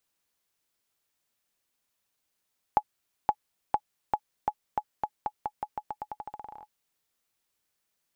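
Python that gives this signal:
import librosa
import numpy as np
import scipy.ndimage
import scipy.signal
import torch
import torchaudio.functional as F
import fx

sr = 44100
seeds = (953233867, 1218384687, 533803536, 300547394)

y = fx.bouncing_ball(sr, first_gap_s=0.52, ratio=0.87, hz=844.0, decay_ms=59.0, level_db=-10.0)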